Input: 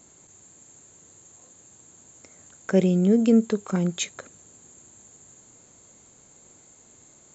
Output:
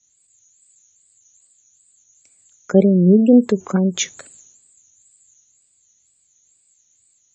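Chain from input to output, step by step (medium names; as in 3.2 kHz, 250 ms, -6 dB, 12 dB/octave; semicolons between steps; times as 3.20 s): wow and flutter 150 cents; spectral gate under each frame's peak -30 dB strong; three bands expanded up and down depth 100%; trim -2 dB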